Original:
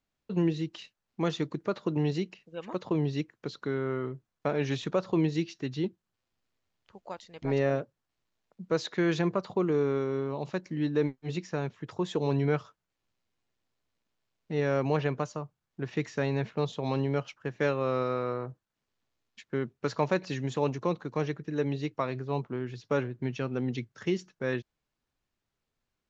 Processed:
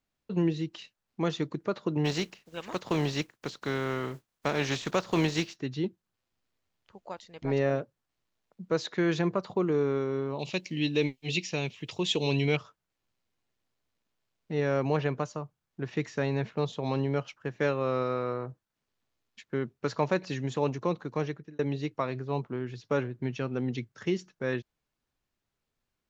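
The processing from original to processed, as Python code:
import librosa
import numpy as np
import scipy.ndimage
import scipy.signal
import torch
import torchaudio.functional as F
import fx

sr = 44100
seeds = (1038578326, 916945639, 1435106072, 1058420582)

y = fx.spec_flatten(x, sr, power=0.62, at=(2.04, 5.55), fade=0.02)
y = fx.high_shelf_res(y, sr, hz=2000.0, db=9.5, q=3.0, at=(10.39, 12.57))
y = fx.edit(y, sr, fx.fade_out_span(start_s=21.1, length_s=0.49, curve='qsin'), tone=tone)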